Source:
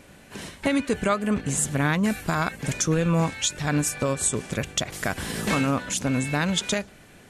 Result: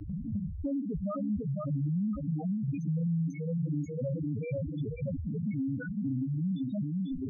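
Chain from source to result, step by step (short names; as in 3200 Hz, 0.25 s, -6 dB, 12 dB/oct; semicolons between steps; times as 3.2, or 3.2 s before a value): CVSD 64 kbps; recorder AGC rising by 52 dB/s; low shelf 150 Hz +6.5 dB; thinning echo 0.502 s, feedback 68%, high-pass 150 Hz, level -4 dB; transient shaper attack -4 dB, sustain +10 dB; loudest bins only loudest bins 2; high shelf 2400 Hz -11 dB; three-band squash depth 100%; gain -6.5 dB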